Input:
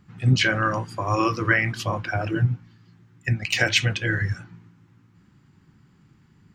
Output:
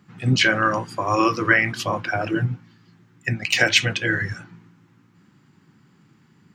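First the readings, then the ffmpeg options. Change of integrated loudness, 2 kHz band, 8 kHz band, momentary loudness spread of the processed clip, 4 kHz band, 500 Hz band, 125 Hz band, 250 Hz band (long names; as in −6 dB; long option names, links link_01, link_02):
+2.5 dB, +3.5 dB, +3.5 dB, 11 LU, +3.5 dB, +3.5 dB, −2.5 dB, +2.5 dB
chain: -af "highpass=160,volume=3.5dB"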